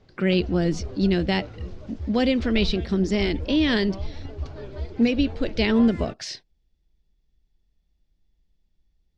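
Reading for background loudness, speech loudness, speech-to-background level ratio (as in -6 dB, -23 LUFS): -36.0 LUFS, -23.5 LUFS, 12.5 dB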